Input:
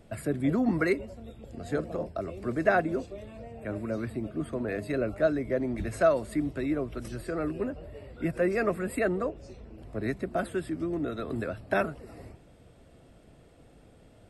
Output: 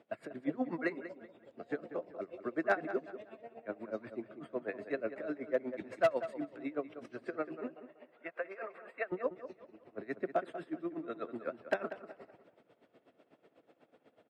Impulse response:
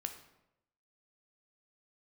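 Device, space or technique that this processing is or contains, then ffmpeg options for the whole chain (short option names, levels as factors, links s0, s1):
helicopter radio: -filter_complex "[0:a]highpass=320,lowpass=2800,highshelf=f=7500:g=6,aeval=exprs='val(0)*pow(10,-24*(0.5-0.5*cos(2*PI*8.1*n/s))/20)':c=same,asoftclip=type=hard:threshold=0.0891,highpass=96,asettb=1/sr,asplit=3[s0][s1][s2];[s0]atrim=end=7.744[s3];[s1]atrim=start=7.74:end=9.12,asetpts=PTS-STARTPTS,afade=t=in:d=0.004:c=qsin,afade=t=out:st=1.376:d=0.004:c=qsin,acrossover=split=540 3300:gain=0.0891 1 0.224[s4][s5][s6];[s4][s5][s6]amix=inputs=3:normalize=0[s7];[s2]atrim=start=9.116[s8];[s3][s7]acrossfade=d=0.004:c1=hsin:c2=qsin[s9];[s9][s8]acrossfade=d=0.004:c1=qsin:c2=hsin,asplit=2[s10][s11];[s11]adelay=190,lowpass=f=3100:p=1,volume=0.251,asplit=2[s12][s13];[s13]adelay=190,lowpass=f=3100:p=1,volume=0.35,asplit=2[s14][s15];[s15]adelay=190,lowpass=f=3100:p=1,volume=0.35,asplit=2[s16][s17];[s17]adelay=190,lowpass=f=3100:p=1,volume=0.35[s18];[s10][s12][s14][s16][s18]amix=inputs=5:normalize=0"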